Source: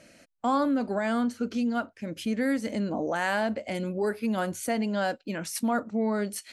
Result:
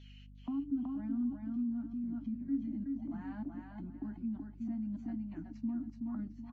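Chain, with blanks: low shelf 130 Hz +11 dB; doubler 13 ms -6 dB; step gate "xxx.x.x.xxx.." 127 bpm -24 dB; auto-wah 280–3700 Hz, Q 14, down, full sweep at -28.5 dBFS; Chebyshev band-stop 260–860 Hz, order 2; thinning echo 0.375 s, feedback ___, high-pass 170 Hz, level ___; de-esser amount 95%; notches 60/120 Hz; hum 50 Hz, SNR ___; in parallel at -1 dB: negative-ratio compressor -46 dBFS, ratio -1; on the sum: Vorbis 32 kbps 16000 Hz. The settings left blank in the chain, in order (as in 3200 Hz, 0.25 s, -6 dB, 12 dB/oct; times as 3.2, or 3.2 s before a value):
27%, -4 dB, 21 dB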